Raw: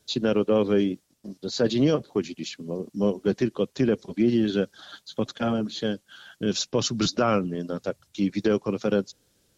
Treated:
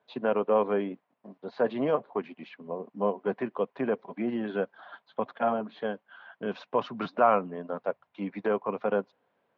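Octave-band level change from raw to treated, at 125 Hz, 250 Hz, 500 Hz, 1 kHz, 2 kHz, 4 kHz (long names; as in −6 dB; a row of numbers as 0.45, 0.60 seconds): −13.0, −9.5, −2.5, +4.5, −2.0, −17.5 decibels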